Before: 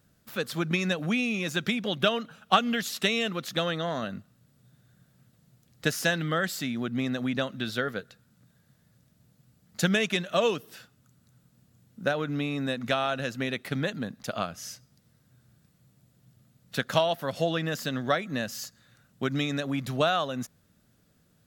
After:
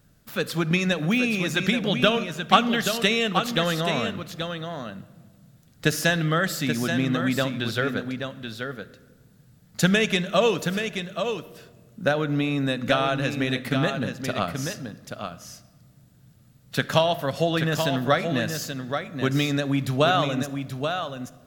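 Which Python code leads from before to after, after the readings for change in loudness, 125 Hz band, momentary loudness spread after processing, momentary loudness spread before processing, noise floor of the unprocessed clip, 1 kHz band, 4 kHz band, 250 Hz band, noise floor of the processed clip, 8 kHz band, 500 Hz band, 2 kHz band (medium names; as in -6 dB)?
+4.5 dB, +7.5 dB, 13 LU, 10 LU, -66 dBFS, +5.0 dB, +5.0 dB, +6.0 dB, -56 dBFS, +5.0 dB, +5.0 dB, +5.0 dB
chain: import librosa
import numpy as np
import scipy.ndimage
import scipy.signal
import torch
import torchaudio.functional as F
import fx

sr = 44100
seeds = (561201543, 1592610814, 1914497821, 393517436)

p1 = fx.low_shelf(x, sr, hz=62.0, db=10.5)
p2 = p1 + fx.echo_single(p1, sr, ms=830, db=-7.0, dry=0)
p3 = fx.room_shoebox(p2, sr, seeds[0], volume_m3=1400.0, walls='mixed', distance_m=0.34)
y = p3 * librosa.db_to_amplitude(4.0)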